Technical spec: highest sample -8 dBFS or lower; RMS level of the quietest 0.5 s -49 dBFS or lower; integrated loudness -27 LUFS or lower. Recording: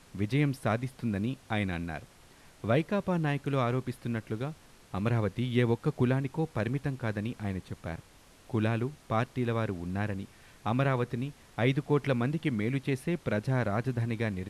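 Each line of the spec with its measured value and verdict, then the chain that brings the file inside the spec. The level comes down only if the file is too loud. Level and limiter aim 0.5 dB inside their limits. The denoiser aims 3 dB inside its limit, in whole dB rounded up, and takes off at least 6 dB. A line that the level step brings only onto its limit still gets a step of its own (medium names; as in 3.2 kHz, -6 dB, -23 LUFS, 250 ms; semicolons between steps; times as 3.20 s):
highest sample -14.0 dBFS: pass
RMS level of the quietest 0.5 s -56 dBFS: pass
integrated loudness -31.5 LUFS: pass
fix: none needed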